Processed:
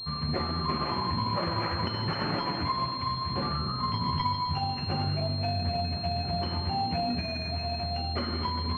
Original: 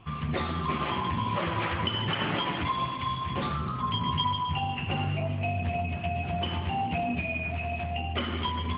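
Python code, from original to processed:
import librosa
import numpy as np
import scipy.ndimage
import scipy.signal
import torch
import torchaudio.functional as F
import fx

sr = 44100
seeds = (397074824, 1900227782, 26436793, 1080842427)

y = fx.pwm(x, sr, carrier_hz=4200.0)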